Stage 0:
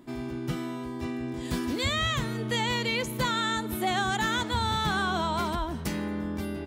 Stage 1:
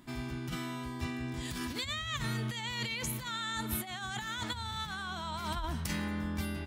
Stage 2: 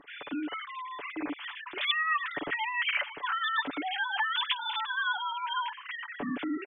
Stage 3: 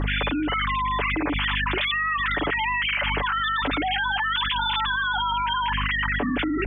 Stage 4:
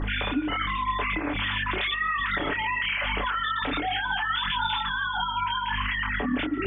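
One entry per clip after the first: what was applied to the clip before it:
compressor whose output falls as the input rises −31 dBFS, ratio −0.5; parametric band 410 Hz −12.5 dB 1.9 octaves
three sine waves on the formant tracks; comb filter 6.9 ms, depth 54%; level +3 dB
mains hum 50 Hz, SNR 14 dB; envelope flattener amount 100%
multi-voice chorus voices 6, 0.89 Hz, delay 27 ms, depth 4.1 ms; tape delay 141 ms, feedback 58%, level −18 dB, low-pass 2,300 Hz

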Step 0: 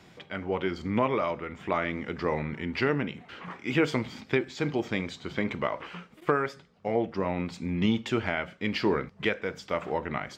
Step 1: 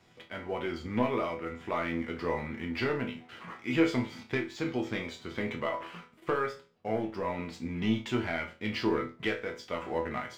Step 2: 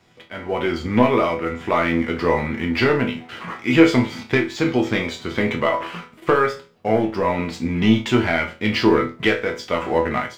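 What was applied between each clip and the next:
leveller curve on the samples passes 1; resonators tuned to a chord E2 sus4, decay 0.31 s; level +5.5 dB
automatic gain control gain up to 8 dB; level +5 dB

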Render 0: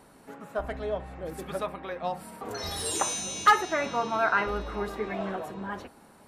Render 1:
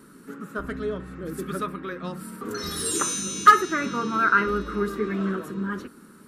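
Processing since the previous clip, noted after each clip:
drawn EQ curve 100 Hz 0 dB, 190 Hz +11 dB, 400 Hz +8 dB, 750 Hz −15 dB, 1,300 Hz +10 dB, 2,200 Hz 0 dB, 11,000 Hz +7 dB
level −1 dB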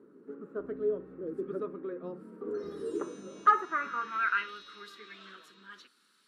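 band-pass filter sweep 420 Hz → 3,800 Hz, 0:03.11–0:04.60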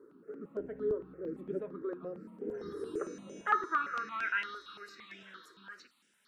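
step-sequenced phaser 8.8 Hz 730–4,200 Hz
level +1.5 dB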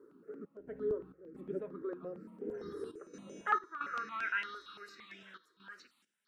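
gate pattern "xx.xx.xxxxx" 67 BPM −12 dB
level −2 dB

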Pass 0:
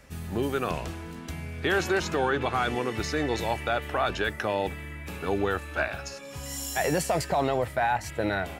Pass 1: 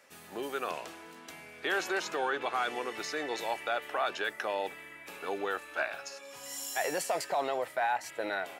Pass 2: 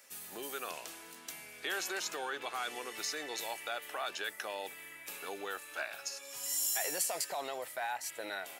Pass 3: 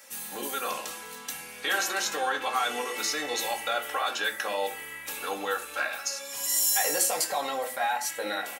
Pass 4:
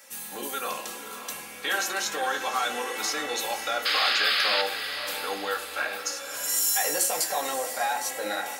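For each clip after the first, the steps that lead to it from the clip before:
high-pass filter 450 Hz 12 dB per octave; level −4 dB
in parallel at −3 dB: downward compressor, threshold −40 dBFS, peak gain reduction 13 dB; on the sum: first-order pre-emphasis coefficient 0.8; level +3.5 dB
comb filter 3.7 ms, depth 70%; on a send at −1.5 dB: convolution reverb RT60 0.40 s, pre-delay 3 ms; on the sum: level +6 dB
sound drawn into the spectrogram noise, 0:03.85–0:04.62, 1,100–5,200 Hz −25 dBFS; on a send: feedback delay with all-pass diffusion 560 ms, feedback 45%, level −10 dB

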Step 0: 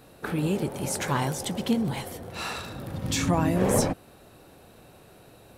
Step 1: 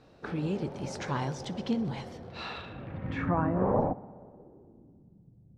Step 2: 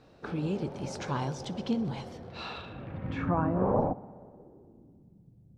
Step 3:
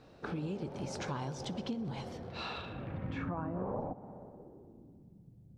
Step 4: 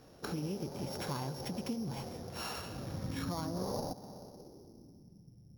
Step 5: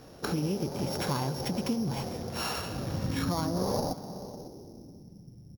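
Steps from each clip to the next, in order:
parametric band 9,900 Hz −12 dB 2.7 octaves; low-pass filter sweep 5,500 Hz → 160 Hz, 0:02.18–0:05.35; feedback echo with a low-pass in the loop 61 ms, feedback 82%, low-pass 4,300 Hz, level −22 dB; level −5 dB
dynamic equaliser 1,900 Hz, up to −7 dB, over −59 dBFS, Q 4.4
downward compressor 5 to 1, threshold −35 dBFS, peak gain reduction 12.5 dB
samples sorted by size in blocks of 8 samples
single-tap delay 549 ms −19 dB; level +7.5 dB

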